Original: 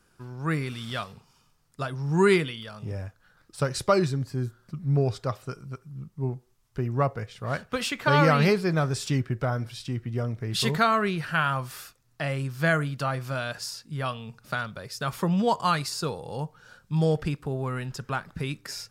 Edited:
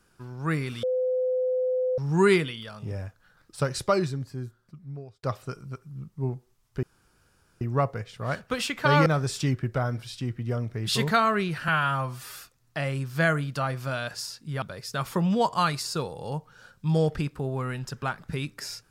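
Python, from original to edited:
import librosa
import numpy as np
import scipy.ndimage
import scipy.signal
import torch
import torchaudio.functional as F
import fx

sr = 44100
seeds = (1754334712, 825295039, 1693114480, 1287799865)

y = fx.edit(x, sr, fx.bleep(start_s=0.83, length_s=1.15, hz=509.0, db=-22.5),
    fx.fade_out_span(start_s=3.61, length_s=1.62),
    fx.insert_room_tone(at_s=6.83, length_s=0.78),
    fx.cut(start_s=8.28, length_s=0.45),
    fx.stretch_span(start_s=11.35, length_s=0.46, factor=1.5),
    fx.cut(start_s=14.06, length_s=0.63), tone=tone)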